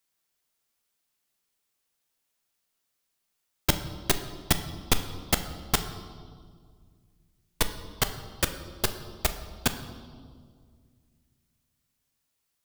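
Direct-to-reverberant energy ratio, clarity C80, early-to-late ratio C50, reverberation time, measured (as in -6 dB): 8.0 dB, 12.0 dB, 10.5 dB, 2.0 s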